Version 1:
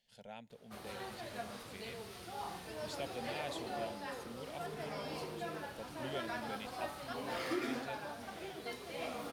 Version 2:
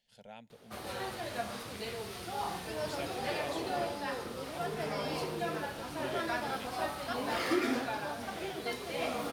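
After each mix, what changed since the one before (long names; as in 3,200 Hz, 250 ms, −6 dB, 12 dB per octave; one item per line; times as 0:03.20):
background +7.0 dB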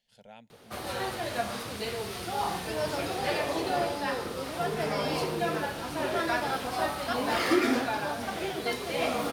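background +6.0 dB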